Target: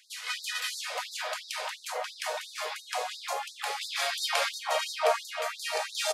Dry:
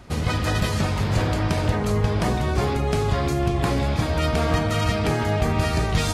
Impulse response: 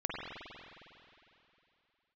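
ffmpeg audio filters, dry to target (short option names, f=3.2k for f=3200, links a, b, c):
-filter_complex "[0:a]asettb=1/sr,asplit=3[a][b][c];[a]atrim=end=3.814[d];[b]atrim=start=3.81:end=4.49,asetpts=PTS-STARTPTS,afade=t=in:d=0.004:c=qsin,afade=t=out:st=0.676:d=0.004:c=qsin,acontrast=67[e];[c]atrim=start=4.486[f];[d][e]acrossfade=d=0.004:c1=hsin:c2=qsin[g];[g][f]acrossfade=d=0.004:c1=qsin:c2=hsin,acrossover=split=270|1300[h][i][j];[h]adelay=130[k];[i]adelay=690[l];[k][l][j]amix=inputs=3:normalize=0,afftfilt=real='re*gte(b*sr/1024,430*pow(3700/430,0.5+0.5*sin(2*PI*2.9*pts/sr)))':imag='im*gte(b*sr/1024,430*pow(3700/430,0.5+0.5*sin(2*PI*2.9*pts/sr)))':win_size=1024:overlap=0.75,volume=-1.5dB"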